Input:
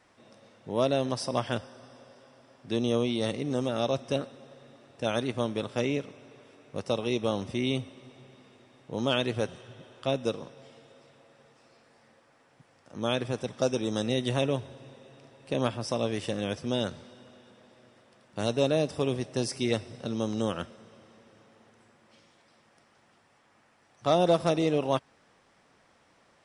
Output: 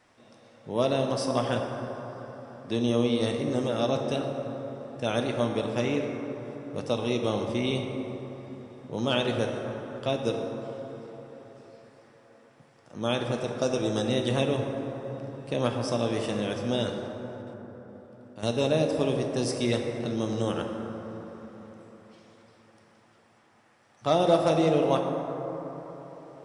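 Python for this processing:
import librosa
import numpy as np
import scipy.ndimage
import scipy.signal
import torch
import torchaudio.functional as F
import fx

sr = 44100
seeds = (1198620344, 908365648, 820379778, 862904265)

y = fx.level_steps(x, sr, step_db=14, at=(17.07, 18.43))
y = fx.rev_plate(y, sr, seeds[0], rt60_s=4.3, hf_ratio=0.3, predelay_ms=0, drr_db=2.5)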